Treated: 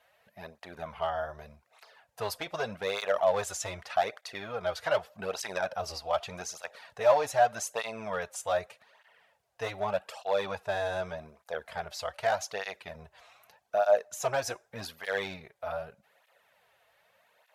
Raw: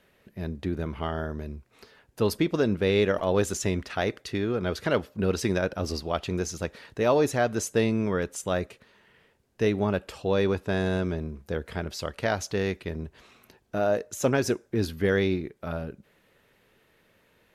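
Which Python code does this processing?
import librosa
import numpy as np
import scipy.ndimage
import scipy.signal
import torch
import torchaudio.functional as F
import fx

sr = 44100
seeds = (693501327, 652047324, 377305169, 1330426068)

y = np.clip(x, -10.0 ** (-16.0 / 20.0), 10.0 ** (-16.0 / 20.0))
y = fx.low_shelf_res(y, sr, hz=470.0, db=-12.5, q=3.0)
y = fx.flanger_cancel(y, sr, hz=0.83, depth_ms=5.4)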